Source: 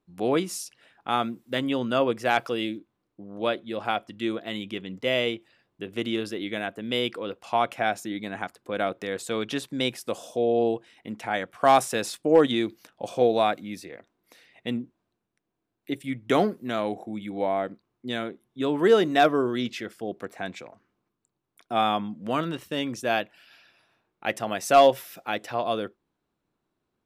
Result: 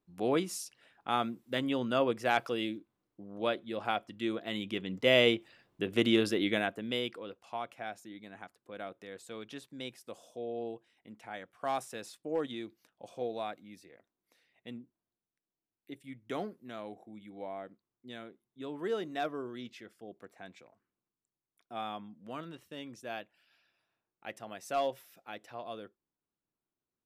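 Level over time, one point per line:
0:04.29 −5.5 dB
0:05.33 +2 dB
0:06.48 +2 dB
0:07.01 −8 dB
0:07.64 −15.5 dB

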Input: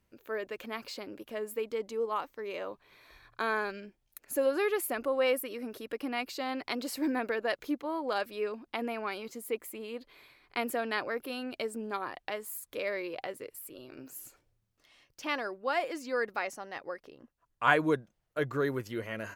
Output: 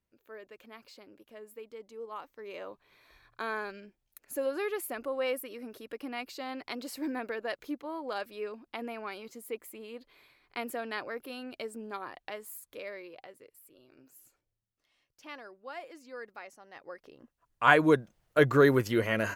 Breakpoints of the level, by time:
0:01.89 −11.5 dB
0:02.58 −4 dB
0:12.51 −4 dB
0:13.32 −12 dB
0:16.60 −12 dB
0:17.06 −2 dB
0:18.39 +9 dB

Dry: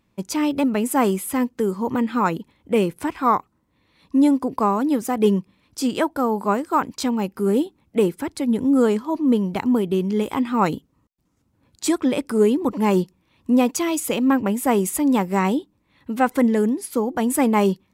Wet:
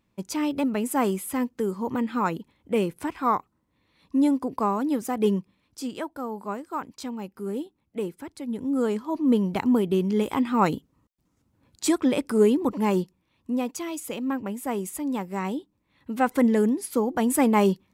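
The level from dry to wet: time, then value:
0:05.35 −5 dB
0:06.00 −11.5 dB
0:08.41 −11.5 dB
0:09.38 −2 dB
0:12.55 −2 dB
0:13.58 −10 dB
0:15.34 −10 dB
0:16.51 −2 dB

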